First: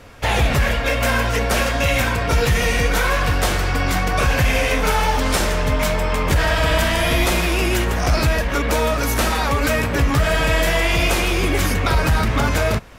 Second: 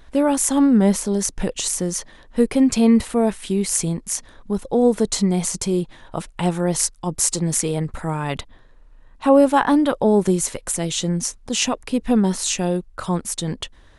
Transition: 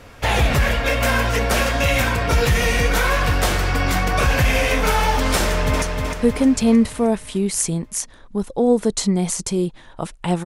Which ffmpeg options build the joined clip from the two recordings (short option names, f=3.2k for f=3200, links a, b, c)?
-filter_complex "[0:a]apad=whole_dur=10.45,atrim=end=10.45,atrim=end=5.822[a];[1:a]atrim=start=1.968:end=6.6[b];[a][b]acrossfade=d=0.004:c1=hsin:c2=hsin,asplit=2[c][d];[d]afade=t=in:st=5.42:d=0.01,afade=t=out:st=5.82:d=0.01,aecho=0:1:310|620|930|1240|1550|1860|2170:0.595662|0.327614|0.180188|0.0991033|0.0545068|0.0299787|0.0164883[e];[c][e]amix=inputs=2:normalize=0"